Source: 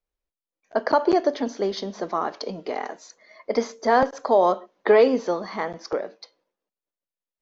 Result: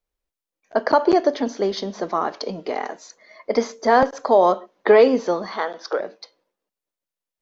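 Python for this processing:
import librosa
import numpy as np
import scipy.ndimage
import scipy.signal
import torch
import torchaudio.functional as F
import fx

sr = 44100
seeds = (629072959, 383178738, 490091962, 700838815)

y = fx.cabinet(x, sr, low_hz=280.0, low_slope=24, high_hz=6100.0, hz=(320.0, 1500.0, 2200.0, 3600.0), db=(-5, 7, -6, 9), at=(5.52, 6.0))
y = y * 10.0 ** (3.0 / 20.0)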